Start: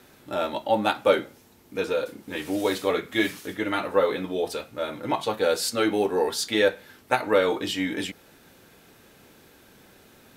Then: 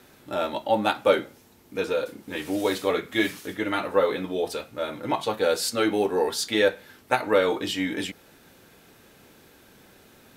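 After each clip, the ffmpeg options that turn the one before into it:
-af anull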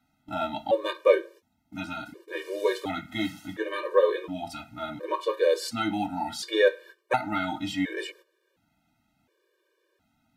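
-af "agate=range=0.178:threshold=0.00562:ratio=16:detection=peak,highshelf=f=5600:g=-9.5,afftfilt=real='re*gt(sin(2*PI*0.7*pts/sr)*(1-2*mod(floor(b*sr/1024/310),2)),0)':imag='im*gt(sin(2*PI*0.7*pts/sr)*(1-2*mod(floor(b*sr/1024/310),2)),0)':win_size=1024:overlap=0.75,volume=1.12"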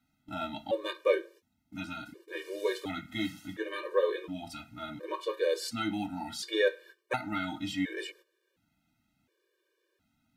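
-af "equalizer=f=780:w=1.2:g=-7,volume=0.708"

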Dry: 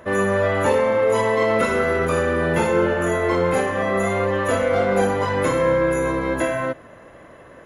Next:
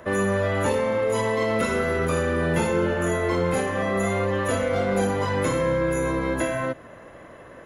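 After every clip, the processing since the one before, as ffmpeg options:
-filter_complex "[0:a]acrossover=split=280|3000[s0][s1][s2];[s1]acompressor=threshold=0.0447:ratio=2[s3];[s0][s3][s2]amix=inputs=3:normalize=0"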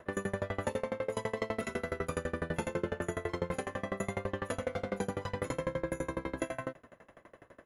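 -af "aeval=exprs='val(0)*pow(10,-27*if(lt(mod(12*n/s,1),2*abs(12)/1000),1-mod(12*n/s,1)/(2*abs(12)/1000),(mod(12*n/s,1)-2*abs(12)/1000)/(1-2*abs(12)/1000))/20)':c=same,volume=0.562"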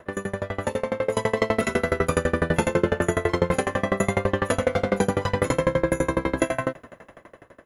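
-af "dynaudnorm=f=280:g=7:m=2.37,volume=1.88"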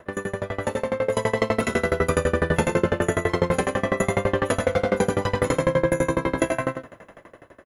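-af "aecho=1:1:99:0.422"

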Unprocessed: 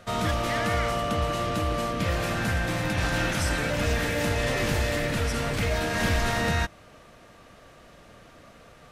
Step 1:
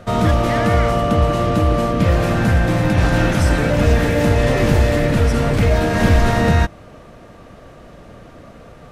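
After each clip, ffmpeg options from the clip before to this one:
-af "tiltshelf=f=1100:g=5.5,volume=2.37"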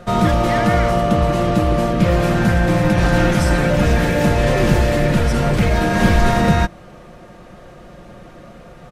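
-af "aecho=1:1:5.6:0.47"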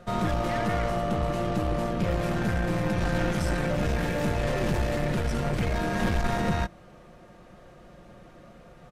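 -af "aeval=exprs='(tanh(3.55*val(0)+0.45)-tanh(0.45))/3.55':c=same,volume=0.376"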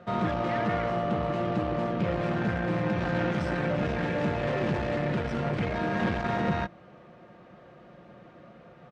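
-af "highpass=110,lowpass=3300"

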